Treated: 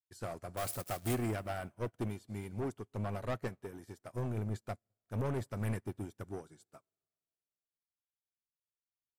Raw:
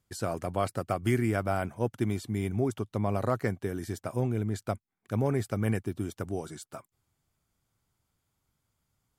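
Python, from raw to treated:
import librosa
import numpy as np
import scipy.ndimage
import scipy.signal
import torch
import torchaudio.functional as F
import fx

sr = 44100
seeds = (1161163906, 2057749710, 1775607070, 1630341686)

y = fx.crossing_spikes(x, sr, level_db=-22.5, at=(0.57, 1.15))
y = fx.low_shelf(y, sr, hz=440.0, db=-3.0, at=(2.08, 2.94))
y = 10.0 ** (-30.0 / 20.0) * np.tanh(y / 10.0 ** (-30.0 / 20.0))
y = fx.low_shelf(y, sr, hz=190.0, db=-4.5, at=(3.48, 4.14))
y = fx.rev_plate(y, sr, seeds[0], rt60_s=2.5, hf_ratio=0.95, predelay_ms=0, drr_db=15.5)
y = fx.upward_expand(y, sr, threshold_db=-56.0, expansion=2.5)
y = y * librosa.db_to_amplitude(1.0)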